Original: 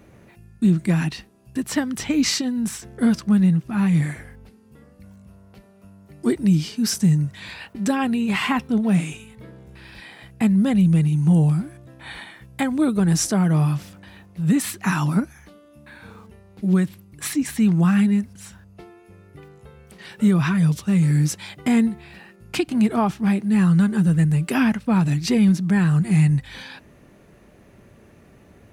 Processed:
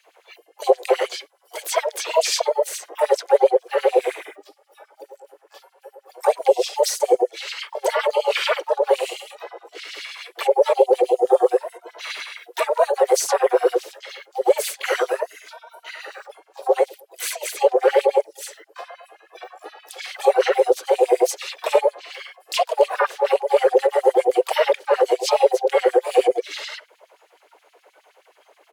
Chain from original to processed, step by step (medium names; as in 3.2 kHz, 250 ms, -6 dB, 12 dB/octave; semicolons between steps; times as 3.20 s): spectral noise reduction 12 dB; in parallel at -0.5 dB: peak limiter -19 dBFS, peak gain reduction 10 dB; on the sum: frequency shift +350 Hz; LFO high-pass sine 9.5 Hz 450–4400 Hz; harmony voices -5 st -9 dB, -4 st -15 dB, +7 st -9 dB; tape noise reduction on one side only encoder only; trim -6 dB